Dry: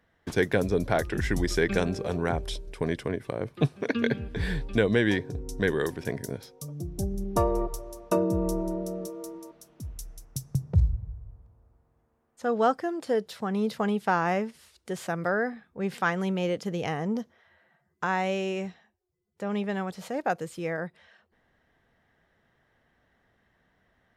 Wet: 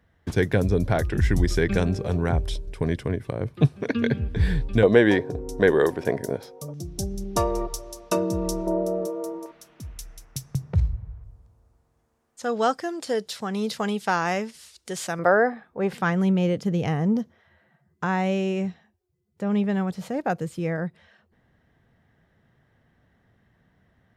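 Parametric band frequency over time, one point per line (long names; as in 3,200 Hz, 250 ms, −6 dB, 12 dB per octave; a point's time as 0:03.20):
parametric band +11 dB 2.4 octaves
74 Hz
from 0:04.83 640 Hz
from 0:06.74 4,700 Hz
from 0:08.67 670 Hz
from 0:09.46 2,100 Hz
from 0:11.24 6,500 Hz
from 0:15.19 760 Hz
from 0:15.93 120 Hz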